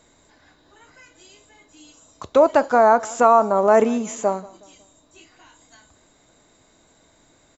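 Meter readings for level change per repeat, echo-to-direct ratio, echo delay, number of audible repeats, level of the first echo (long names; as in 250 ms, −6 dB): −8.0 dB, −21.5 dB, 183 ms, 2, −22.0 dB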